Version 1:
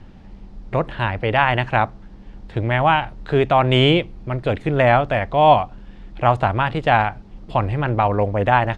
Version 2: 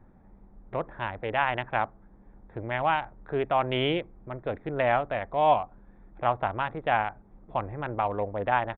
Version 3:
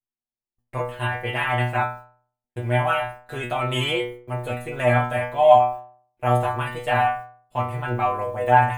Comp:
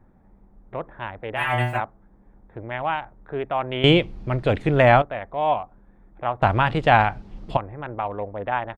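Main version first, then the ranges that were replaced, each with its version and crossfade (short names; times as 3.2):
2
1.38–1.79 from 3, crossfade 0.06 s
3.84–5.02 from 1
6.42–7.57 from 1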